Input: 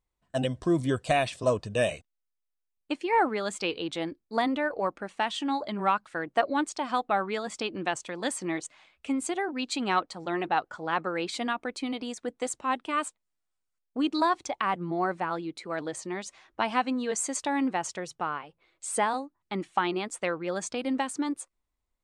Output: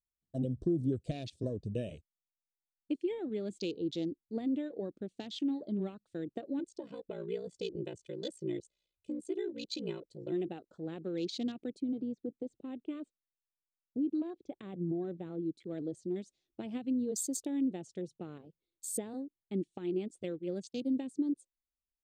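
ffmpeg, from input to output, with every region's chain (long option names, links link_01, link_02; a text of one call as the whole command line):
ffmpeg -i in.wav -filter_complex "[0:a]asettb=1/sr,asplit=3[link_01][link_02][link_03];[link_01]atrim=end=6.594[link_04];[link_02]atrim=start=6.59:end=10.32,asetpts=PTS-STARTPTS,afade=type=in:duration=0.004:curve=qsin,afade=type=out:start_time=3.726:duration=0.004:curve=qsin,aeval=exprs='val(0)*sin(2*PI*29*n/s)':channel_layout=same,aecho=1:1:2:0.82,atrim=end_sample=164493[link_05];[link_03]atrim=start=10.316[link_06];[link_04][link_05]acrossfade=duration=0.004:curve1=hsin:curve2=qsin[link_07];[link_07][link_06]acrossfade=duration=0.004:curve1=qsin:curve2=hsin,asettb=1/sr,asplit=3[link_08][link_09][link_10];[link_08]atrim=end=11.804[link_11];[link_09]atrim=start=11.8:end=15.46,asetpts=PTS-STARTPTS,afade=type=in:duration=0.004:curve=qsin,afade=type=out:start_time=3.656:duration=0.004:curve=qsin,lowpass=2600,acompressor=threshold=-30dB:ratio=2:attack=3.2:release=140:knee=1:detection=peak[link_12];[link_10]atrim=start=15.456[link_13];[link_11][link_12]acrossfade=duration=0.004:curve1=hsin:curve2=qsin[link_14];[link_14][link_13]acrossfade=duration=0.004:curve1=qsin:curve2=hsin,asettb=1/sr,asplit=3[link_15][link_16][link_17];[link_15]atrim=end=20.234[link_18];[link_16]atrim=start=20.23:end=20.94,asetpts=PTS-STARTPTS,afade=type=in:duration=0.004:curve=qsin,afade=type=out:start_time=0.706:duration=0.004:curve=qsin,agate=range=-33dB:threshold=-31dB:ratio=3:release=100:detection=peak,highshelf=frequency=4400:gain=7[link_19];[link_17]atrim=start=20.936[link_20];[link_18][link_19]acrossfade=duration=0.004:curve1=hsin:curve2=qsin[link_21];[link_21][link_20]acrossfade=duration=0.004:curve1=qsin:curve2=hsin,acompressor=threshold=-26dB:ratio=16,afwtdn=0.00891,firequalizer=gain_entry='entry(360,0);entry(970,-29);entry(3700,-4)':delay=0.05:min_phase=1" out.wav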